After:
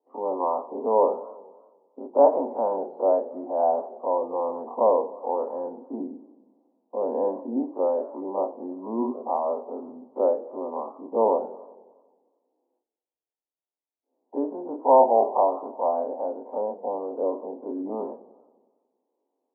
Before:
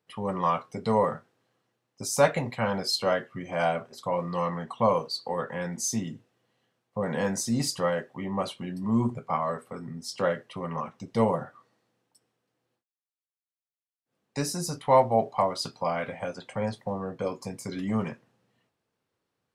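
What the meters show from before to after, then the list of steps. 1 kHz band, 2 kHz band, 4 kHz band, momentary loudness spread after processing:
+3.5 dB, under -25 dB, under -40 dB, 15 LU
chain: spectral dilation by 60 ms; Chebyshev band-pass 260–940 Hz, order 4; warbling echo 91 ms, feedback 64%, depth 152 cents, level -17 dB; gain +2.5 dB

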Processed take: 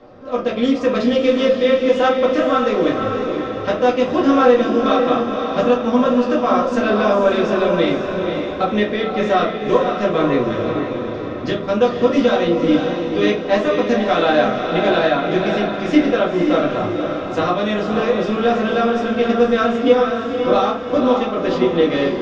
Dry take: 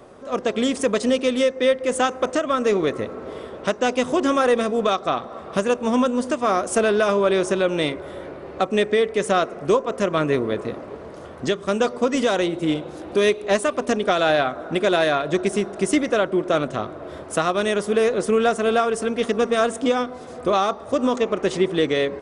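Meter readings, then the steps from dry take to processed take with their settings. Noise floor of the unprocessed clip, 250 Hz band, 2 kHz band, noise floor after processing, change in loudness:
-38 dBFS, +6.0 dB, +2.5 dB, -26 dBFS, +4.0 dB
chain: steep low-pass 5400 Hz 36 dB/oct; diffused feedback echo 0.518 s, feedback 50%, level -5 dB; shoebox room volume 160 m³, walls furnished, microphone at 2.1 m; gain -3 dB

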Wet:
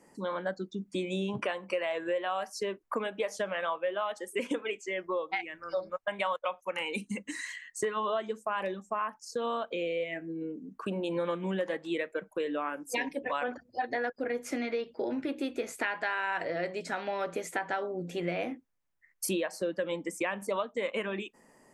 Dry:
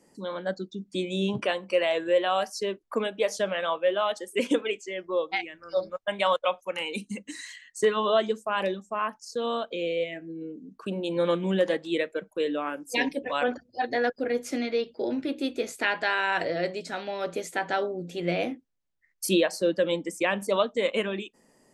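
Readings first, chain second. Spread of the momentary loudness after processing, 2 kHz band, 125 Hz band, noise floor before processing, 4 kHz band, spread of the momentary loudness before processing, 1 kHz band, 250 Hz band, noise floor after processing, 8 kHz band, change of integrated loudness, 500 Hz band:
5 LU, -4.5 dB, -5.0 dB, -67 dBFS, -8.5 dB, 9 LU, -4.0 dB, -5.5 dB, -67 dBFS, -3.0 dB, -5.5 dB, -6.5 dB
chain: graphic EQ 1000/2000/4000 Hz +5/+4/-5 dB; compressor 4:1, threshold -30 dBFS, peak gain reduction 12.5 dB

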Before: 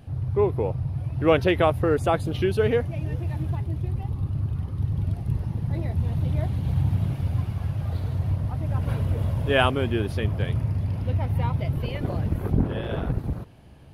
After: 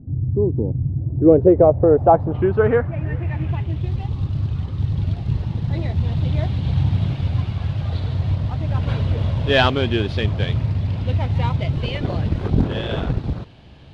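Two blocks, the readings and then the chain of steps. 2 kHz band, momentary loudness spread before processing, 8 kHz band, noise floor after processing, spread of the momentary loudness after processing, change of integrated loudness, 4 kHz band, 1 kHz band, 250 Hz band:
+3.5 dB, 8 LU, n/a, -32 dBFS, 10 LU, +5.5 dB, +7.0 dB, +5.5 dB, +6.5 dB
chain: CVSD 64 kbps; low-pass sweep 270 Hz -> 3800 Hz, 0.86–3.93; gain +4.5 dB

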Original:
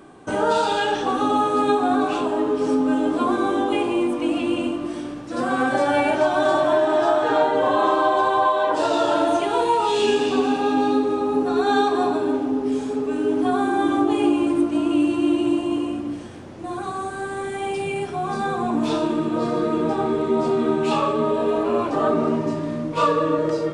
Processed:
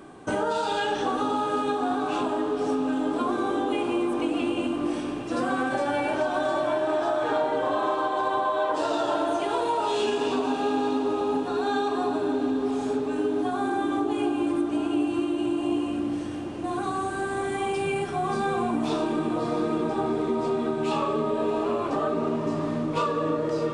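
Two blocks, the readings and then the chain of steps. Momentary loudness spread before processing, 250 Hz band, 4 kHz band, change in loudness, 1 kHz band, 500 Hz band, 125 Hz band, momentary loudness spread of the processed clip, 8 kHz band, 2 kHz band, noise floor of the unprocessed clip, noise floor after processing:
8 LU, -5.0 dB, -5.0 dB, -5.5 dB, -5.5 dB, -5.5 dB, -3.5 dB, 3 LU, -4.0 dB, -5.0 dB, -31 dBFS, -31 dBFS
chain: compressor, threshold -23 dBFS, peak gain reduction 9 dB; on a send: diffused feedback echo 0.708 s, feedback 61%, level -11 dB

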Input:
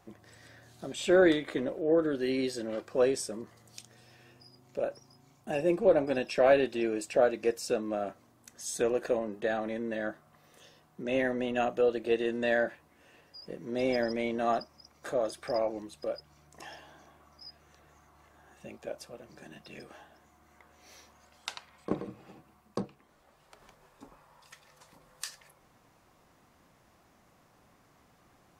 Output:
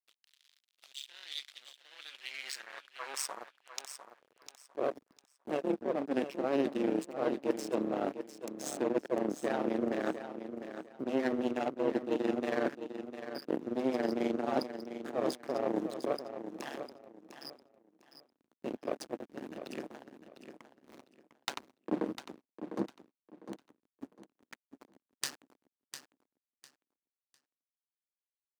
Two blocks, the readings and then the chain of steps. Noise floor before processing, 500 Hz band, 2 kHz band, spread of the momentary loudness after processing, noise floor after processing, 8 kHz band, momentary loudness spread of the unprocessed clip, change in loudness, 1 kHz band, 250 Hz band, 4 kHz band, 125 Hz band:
-65 dBFS, -6.0 dB, -7.5 dB, 18 LU, under -85 dBFS, -2.0 dB, 21 LU, -5.5 dB, -3.0 dB, -1.5 dB, -2.0 dB, -5.0 dB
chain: reverse; compressor 16:1, threshold -36 dBFS, peak gain reduction 19.5 dB; reverse; AM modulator 140 Hz, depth 70%; added harmonics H 3 -21 dB, 5 -26 dB, 8 -23 dB, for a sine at -23 dBFS; backlash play -44.5 dBFS; high-pass sweep 3500 Hz -> 270 Hz, 1.82–4.98; on a send: feedback echo 0.702 s, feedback 24%, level -10 dB; on the sum: gain +9 dB

